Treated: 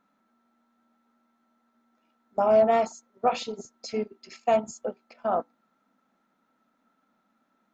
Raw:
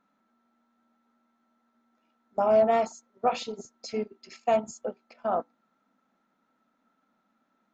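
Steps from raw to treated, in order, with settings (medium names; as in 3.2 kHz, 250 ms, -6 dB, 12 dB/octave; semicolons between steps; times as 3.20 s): trim +1.5 dB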